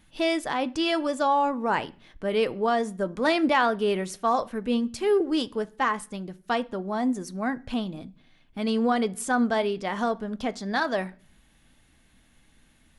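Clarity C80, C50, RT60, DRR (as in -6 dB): 27.0 dB, 22.0 dB, 0.45 s, 11.5 dB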